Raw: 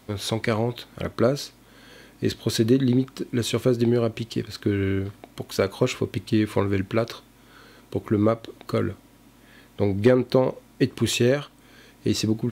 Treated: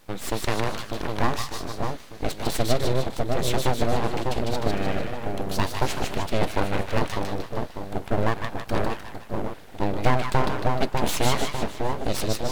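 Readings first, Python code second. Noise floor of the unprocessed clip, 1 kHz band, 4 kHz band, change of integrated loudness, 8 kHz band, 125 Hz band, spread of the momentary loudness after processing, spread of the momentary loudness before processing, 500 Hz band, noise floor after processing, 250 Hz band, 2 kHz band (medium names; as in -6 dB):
-54 dBFS, +8.5 dB, 0.0 dB, -3.0 dB, +1.0 dB, -2.0 dB, 8 LU, 11 LU, -3.5 dB, -40 dBFS, -6.0 dB, +2.5 dB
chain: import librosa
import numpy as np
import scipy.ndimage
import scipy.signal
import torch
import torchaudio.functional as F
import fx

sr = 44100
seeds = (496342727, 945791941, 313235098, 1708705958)

y = fx.echo_split(x, sr, split_hz=560.0, low_ms=598, high_ms=152, feedback_pct=52, wet_db=-3.0)
y = np.abs(y)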